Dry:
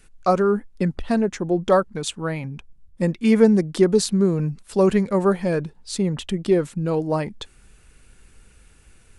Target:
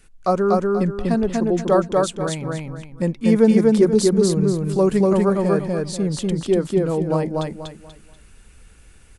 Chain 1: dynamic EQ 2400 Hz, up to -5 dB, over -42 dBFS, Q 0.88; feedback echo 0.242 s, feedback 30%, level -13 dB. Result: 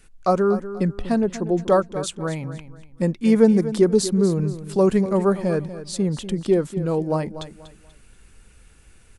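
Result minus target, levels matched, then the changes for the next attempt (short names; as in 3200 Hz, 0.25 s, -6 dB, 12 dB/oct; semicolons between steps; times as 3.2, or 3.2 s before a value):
echo-to-direct -11.5 dB
change: feedback echo 0.242 s, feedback 30%, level -1.5 dB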